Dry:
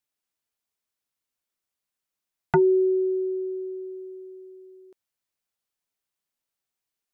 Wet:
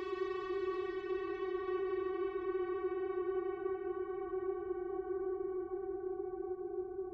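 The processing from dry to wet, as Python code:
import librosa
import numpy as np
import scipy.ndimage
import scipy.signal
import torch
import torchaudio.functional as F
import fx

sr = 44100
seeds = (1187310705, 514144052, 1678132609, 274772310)

y = scipy.signal.sosfilt(scipy.signal.butter(2, 1500.0, 'lowpass', fs=sr, output='sos'), x)
y = fx.low_shelf(y, sr, hz=280.0, db=-4.5)
y = fx.over_compress(y, sr, threshold_db=-28.0, ratio=-0.5)
y = fx.tube_stage(y, sr, drive_db=37.0, bias=0.45)
y = fx.add_hum(y, sr, base_hz=50, snr_db=19)
y = fx.paulstretch(y, sr, seeds[0], factor=6.9, window_s=0.05, from_s=3.28)
y = y + 10.0 ** (-11.5 / 20.0) * np.pad(y, (int(743 * sr / 1000.0), 0))[:len(y)]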